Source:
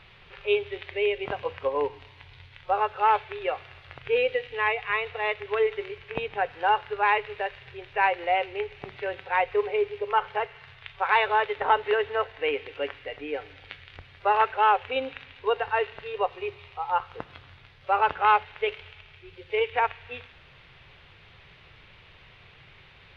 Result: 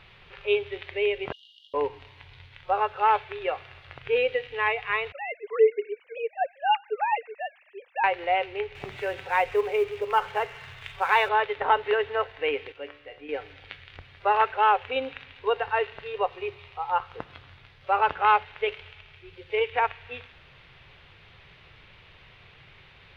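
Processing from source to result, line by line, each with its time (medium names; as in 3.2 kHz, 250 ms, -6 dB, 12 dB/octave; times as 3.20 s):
1.32–1.74 s: brick-wall FIR high-pass 2.8 kHz
5.12–8.04 s: formants replaced by sine waves
8.75–11.29 s: companding laws mixed up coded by mu
12.72–13.29 s: feedback comb 73 Hz, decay 0.63 s, mix 70%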